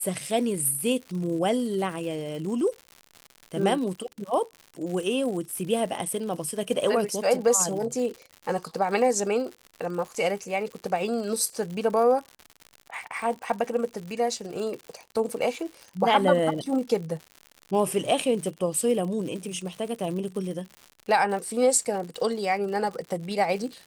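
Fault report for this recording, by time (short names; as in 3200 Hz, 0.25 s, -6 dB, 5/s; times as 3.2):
crackle 120/s -34 dBFS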